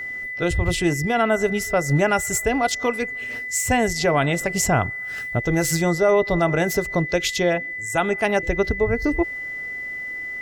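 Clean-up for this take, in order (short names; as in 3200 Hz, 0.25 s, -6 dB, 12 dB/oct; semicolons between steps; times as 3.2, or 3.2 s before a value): notch 2000 Hz, Q 30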